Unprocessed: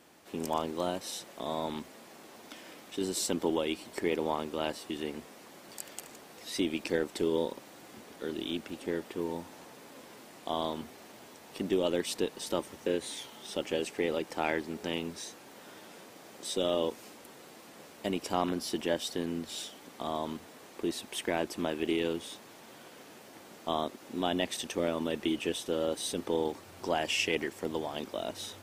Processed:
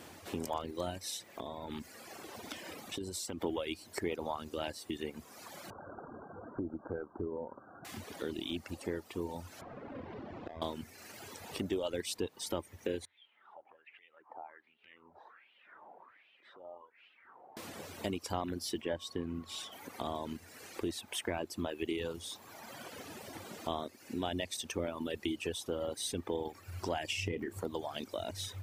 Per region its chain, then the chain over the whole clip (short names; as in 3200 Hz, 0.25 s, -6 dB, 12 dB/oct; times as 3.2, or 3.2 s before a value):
1.16–3.41 compressor 5:1, threshold -37 dBFS + mismatched tape noise reduction decoder only
5.7–7.85 Chebyshev low-pass 1600 Hz, order 10 + compressor 2:1, threshold -35 dBFS
9.61–10.62 half-waves squared off + compressor 16:1, threshold -41 dBFS + tape spacing loss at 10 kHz 39 dB
13.05–17.57 air absorption 500 m + compressor 3:1, threshold -48 dBFS + wah 1.3 Hz 780–2900 Hz, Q 3.8
18.81–19.71 high shelf 3900 Hz -9 dB + whine 1100 Hz -53 dBFS
27.12–27.61 low shelf 460 Hz +11 dB + compressor 2:1, threshold -33 dBFS + doubler 32 ms -10 dB
whole clip: bell 90 Hz +14.5 dB 0.54 oct; reverb removal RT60 1.5 s; compressor 2:1, threshold -51 dBFS; gain +8 dB